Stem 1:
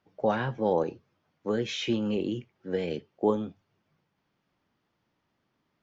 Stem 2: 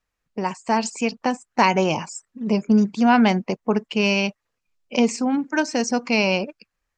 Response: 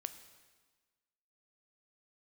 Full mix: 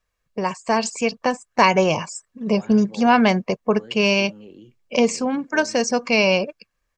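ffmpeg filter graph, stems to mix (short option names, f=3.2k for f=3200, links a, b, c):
-filter_complex "[0:a]adelay=2300,volume=-14dB[a];[1:a]aecho=1:1:1.8:0.41,volume=2dB[b];[a][b]amix=inputs=2:normalize=0"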